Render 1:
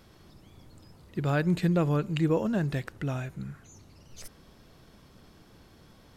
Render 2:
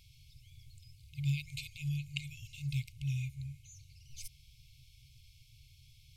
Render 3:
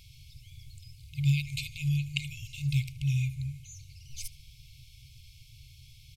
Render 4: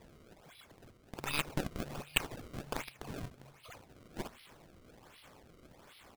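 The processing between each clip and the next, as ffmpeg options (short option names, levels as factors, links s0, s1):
-af "afftfilt=real='re*(1-between(b*sr/4096,150,2100))':imag='im*(1-between(b*sr/4096,150,2100))':win_size=4096:overlap=0.75,volume=0.891"
-filter_complex "[0:a]asplit=2[s0][s1];[s1]adelay=77,lowpass=f=3700:p=1,volume=0.158,asplit=2[s2][s3];[s3]adelay=77,lowpass=f=3700:p=1,volume=0.51,asplit=2[s4][s5];[s5]adelay=77,lowpass=f=3700:p=1,volume=0.51,asplit=2[s6][s7];[s7]adelay=77,lowpass=f=3700:p=1,volume=0.51,asplit=2[s8][s9];[s9]adelay=77,lowpass=f=3700:p=1,volume=0.51[s10];[s0][s2][s4][s6][s8][s10]amix=inputs=6:normalize=0,volume=2.24"
-af "bandpass=f=3300:t=q:w=0.99:csg=0,acrusher=samples=29:mix=1:aa=0.000001:lfo=1:lforange=46.4:lforate=1.3,aeval=exprs='0.168*(cos(1*acos(clip(val(0)/0.168,-1,1)))-cos(1*PI/2))+0.0335*(cos(8*acos(clip(val(0)/0.168,-1,1)))-cos(8*PI/2))':c=same,volume=1.5"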